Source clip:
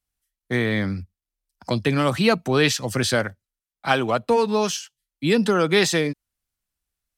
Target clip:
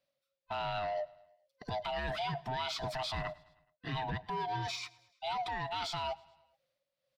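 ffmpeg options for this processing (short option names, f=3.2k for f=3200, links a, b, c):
-af "afftfilt=real='real(if(lt(b,1008),b+24*(1-2*mod(floor(b/24),2)),b),0)':imag='imag(if(lt(b,1008),b+24*(1-2*mod(floor(b/24),2)),b),0)':win_size=2048:overlap=0.75,equalizer=f=140:t=o:w=0.58:g=12.5,bandreject=f=810:w=20,tremolo=f=1.8:d=0.58,areverse,acompressor=threshold=-28dB:ratio=12,areverse,alimiter=level_in=5dB:limit=-24dB:level=0:latency=1:release=85,volume=-5dB,asoftclip=type=tanh:threshold=-32dB,highshelf=f=5.8k:t=q:w=1.5:g=-11.5,aecho=1:1:106|212|318|424:0.0668|0.0394|0.0233|0.0137,volume=2.5dB"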